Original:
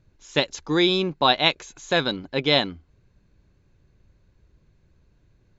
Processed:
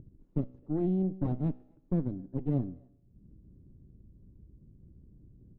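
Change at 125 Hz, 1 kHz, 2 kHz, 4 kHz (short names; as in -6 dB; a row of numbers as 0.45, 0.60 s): +1.0 dB, -24.5 dB, under -35 dB, under -40 dB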